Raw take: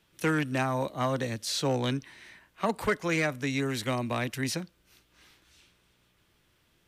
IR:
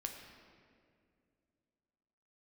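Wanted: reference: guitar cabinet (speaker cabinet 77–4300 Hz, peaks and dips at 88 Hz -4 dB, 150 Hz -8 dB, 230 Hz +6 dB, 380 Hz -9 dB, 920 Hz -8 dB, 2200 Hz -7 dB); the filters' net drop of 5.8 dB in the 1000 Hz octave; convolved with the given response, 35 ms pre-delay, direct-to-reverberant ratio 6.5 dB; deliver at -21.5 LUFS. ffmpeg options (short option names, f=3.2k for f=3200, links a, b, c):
-filter_complex "[0:a]equalizer=f=1k:t=o:g=-3.5,asplit=2[a][b];[1:a]atrim=start_sample=2205,adelay=35[c];[b][c]afir=irnorm=-1:irlink=0,volume=-5dB[d];[a][d]amix=inputs=2:normalize=0,highpass=77,equalizer=f=88:t=q:w=4:g=-4,equalizer=f=150:t=q:w=4:g=-8,equalizer=f=230:t=q:w=4:g=6,equalizer=f=380:t=q:w=4:g=-9,equalizer=f=920:t=q:w=4:g=-8,equalizer=f=2.2k:t=q:w=4:g=-7,lowpass=f=4.3k:w=0.5412,lowpass=f=4.3k:w=1.3066,volume=10.5dB"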